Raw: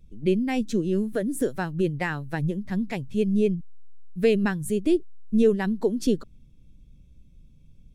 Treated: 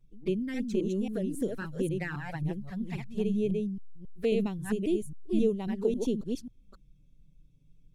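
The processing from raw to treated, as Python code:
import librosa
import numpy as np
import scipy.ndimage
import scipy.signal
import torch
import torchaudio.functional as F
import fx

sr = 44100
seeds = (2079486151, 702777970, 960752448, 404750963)

y = fx.reverse_delay(x, sr, ms=270, wet_db=-3)
y = fx.env_flanger(y, sr, rest_ms=8.2, full_db=-19.0)
y = y * 10.0 ** (-7.0 / 20.0)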